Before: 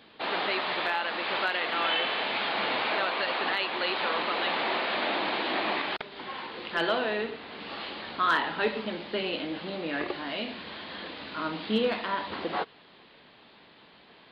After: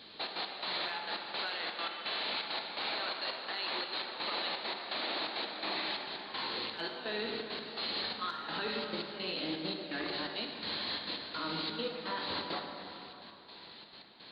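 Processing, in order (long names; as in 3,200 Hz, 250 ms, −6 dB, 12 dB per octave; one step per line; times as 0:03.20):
parametric band 4,200 Hz +14.5 dB 0.42 octaves
brickwall limiter −26.5 dBFS, peak gain reduction 14 dB
gate pattern "xxx.x..x" 168 BPM −12 dB
on a send: convolution reverb RT60 3.3 s, pre-delay 23 ms, DRR 3.5 dB
on the sum: level −1.5 dB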